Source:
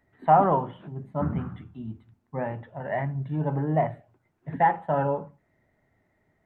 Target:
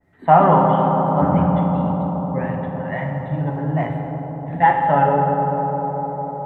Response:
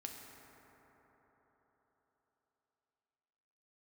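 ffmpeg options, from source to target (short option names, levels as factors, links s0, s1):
-filter_complex "[0:a]asettb=1/sr,asplit=3[s0][s1][s2];[s0]atrim=end=2.384[s3];[s1]atrim=start=2.38:end=4.63,asetpts=PTS-STARTPTS,afade=t=in:d=0.004:c=qsin,afade=t=out:st=2.246:d=0.004:c=qsin,equalizer=f=550:t=o:w=2.3:g=-8[s4];[s2]atrim=start=4.626[s5];[s3][s4]acrossfade=d=0.004:c1=hsin:c2=qsin[s6];[s6][s5]acrossfade=d=0.004:c1=qsin:c2=hsin[s7];[1:a]atrim=start_sample=2205,asetrate=28224,aresample=44100[s8];[s7][s8]afir=irnorm=-1:irlink=0,adynamicequalizer=threshold=0.0112:dfrequency=1600:dqfactor=0.7:tfrequency=1600:tqfactor=0.7:attack=5:release=100:ratio=0.375:range=3:mode=boostabove:tftype=highshelf,volume=2.66"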